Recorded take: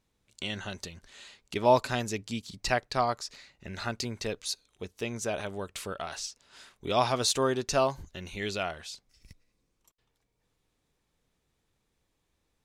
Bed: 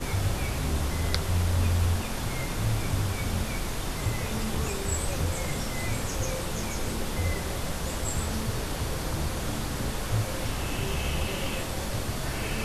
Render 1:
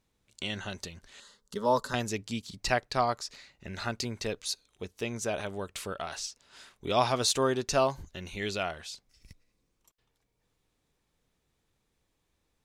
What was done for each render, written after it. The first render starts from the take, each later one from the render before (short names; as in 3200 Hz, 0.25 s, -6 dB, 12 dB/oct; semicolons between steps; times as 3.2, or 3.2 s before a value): 1.2–1.94 fixed phaser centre 480 Hz, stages 8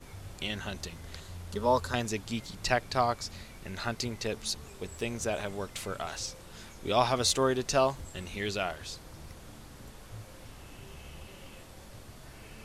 add bed -18 dB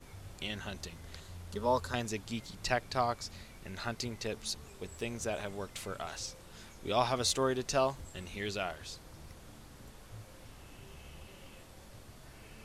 gain -4 dB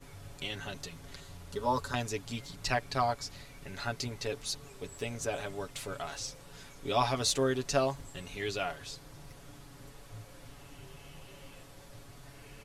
comb 7.1 ms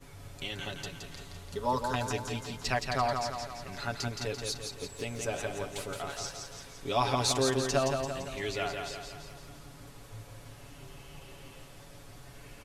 feedback echo 0.17 s, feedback 54%, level -5 dB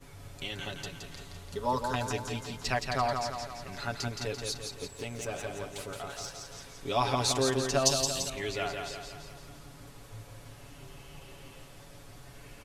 4.88–6.49 tube stage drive 28 dB, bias 0.4; 7.85–8.3 resonant high shelf 3000 Hz +14 dB, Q 1.5